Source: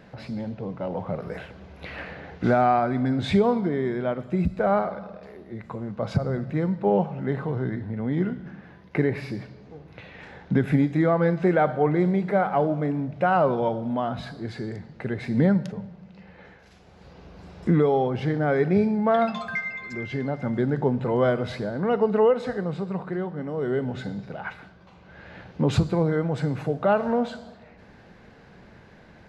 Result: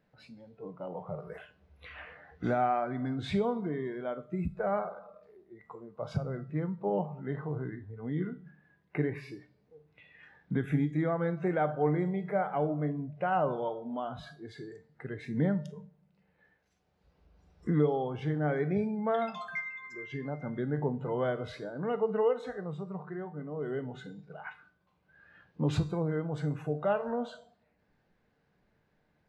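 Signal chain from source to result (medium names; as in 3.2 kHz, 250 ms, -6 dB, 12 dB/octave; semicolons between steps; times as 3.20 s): spectral noise reduction 14 dB; feedback comb 150 Hz, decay 0.36 s, harmonics all, mix 60%; trim -2.5 dB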